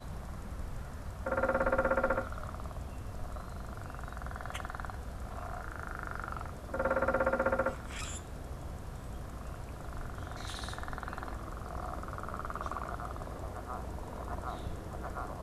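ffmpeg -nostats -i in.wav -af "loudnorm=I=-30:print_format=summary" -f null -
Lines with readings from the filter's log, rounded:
Input Integrated:    -38.4 LUFS
Input True Peak:     -15.7 dBTP
Input LRA:             7.0 LU
Input Threshold:     -48.4 LUFS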